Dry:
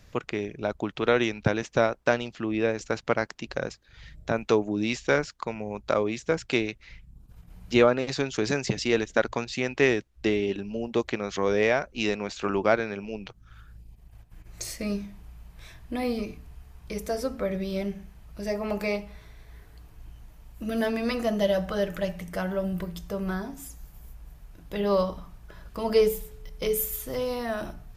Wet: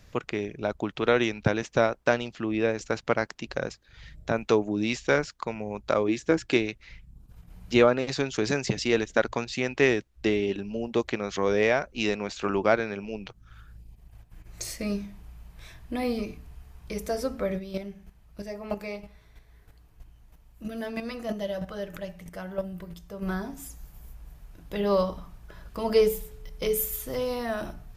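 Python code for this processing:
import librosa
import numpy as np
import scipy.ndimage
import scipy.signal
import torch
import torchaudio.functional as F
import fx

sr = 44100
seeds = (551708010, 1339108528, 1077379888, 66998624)

y = fx.small_body(x, sr, hz=(320.0, 1700.0), ring_ms=45, db=9, at=(6.08, 6.57))
y = fx.chopper(y, sr, hz=3.1, depth_pct=60, duty_pct=10, at=(17.58, 23.21), fade=0.02)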